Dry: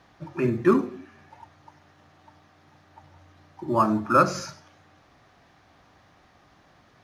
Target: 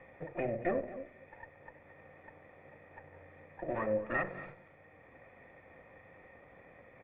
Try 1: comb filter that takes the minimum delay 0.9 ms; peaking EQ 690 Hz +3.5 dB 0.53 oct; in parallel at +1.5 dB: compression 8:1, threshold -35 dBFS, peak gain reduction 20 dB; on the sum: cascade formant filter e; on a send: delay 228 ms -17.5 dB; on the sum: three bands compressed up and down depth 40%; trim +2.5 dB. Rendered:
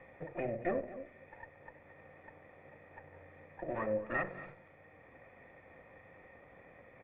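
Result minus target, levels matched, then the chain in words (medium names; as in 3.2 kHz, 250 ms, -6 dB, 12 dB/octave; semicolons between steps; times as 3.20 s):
compression: peak gain reduction +8 dB
comb filter that takes the minimum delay 0.9 ms; peaking EQ 690 Hz +3.5 dB 0.53 oct; in parallel at +1.5 dB: compression 8:1, threshold -26 dBFS, peak gain reduction 12.5 dB; on the sum: cascade formant filter e; on a send: delay 228 ms -17.5 dB; on the sum: three bands compressed up and down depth 40%; trim +2.5 dB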